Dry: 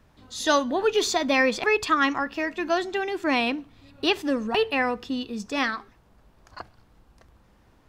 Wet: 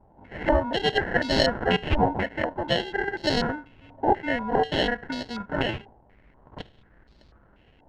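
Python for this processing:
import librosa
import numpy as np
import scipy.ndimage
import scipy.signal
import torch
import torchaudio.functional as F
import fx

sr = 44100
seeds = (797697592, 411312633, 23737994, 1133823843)

y = fx.cvsd(x, sr, bps=32000)
y = fx.dynamic_eq(y, sr, hz=310.0, q=1.3, threshold_db=-35.0, ratio=4.0, max_db=-5)
y = fx.sample_hold(y, sr, seeds[0], rate_hz=1200.0, jitter_pct=0)
y = fx.filter_held_lowpass(y, sr, hz=4.1, low_hz=840.0, high_hz=4400.0)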